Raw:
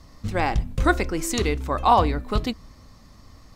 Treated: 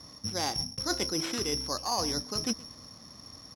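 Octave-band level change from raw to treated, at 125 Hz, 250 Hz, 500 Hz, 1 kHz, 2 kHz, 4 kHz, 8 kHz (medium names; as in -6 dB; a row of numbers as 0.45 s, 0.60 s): -14.5 dB, -8.5 dB, -10.5 dB, -14.5 dB, -12.0 dB, +4.0 dB, +1.5 dB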